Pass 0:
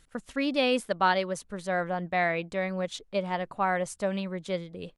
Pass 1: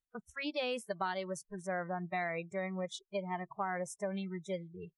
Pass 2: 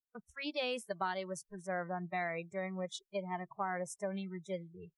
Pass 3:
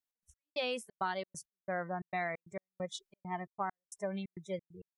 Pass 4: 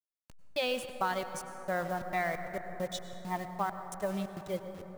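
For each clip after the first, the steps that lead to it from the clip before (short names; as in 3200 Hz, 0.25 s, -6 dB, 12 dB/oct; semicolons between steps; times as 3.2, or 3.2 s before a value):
spectral noise reduction 30 dB; compressor 6:1, threshold -27 dBFS, peak gain reduction 8.5 dB; gain -5 dB
three-band expander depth 40%; gain -1 dB
step gate "x.x..xxx.x" 134 bpm -60 dB; gain +1 dB
level-crossing sampler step -47 dBFS; plate-style reverb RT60 4.1 s, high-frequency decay 0.3×, pre-delay 85 ms, DRR 8 dB; gain +3.5 dB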